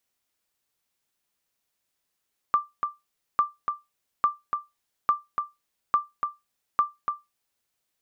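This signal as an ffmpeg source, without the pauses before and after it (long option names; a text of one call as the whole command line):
ffmpeg -f lavfi -i "aevalsrc='0.237*(sin(2*PI*1180*mod(t,0.85))*exp(-6.91*mod(t,0.85)/0.2)+0.501*sin(2*PI*1180*max(mod(t,0.85)-0.29,0))*exp(-6.91*max(mod(t,0.85)-0.29,0)/0.2))':duration=5.1:sample_rate=44100" out.wav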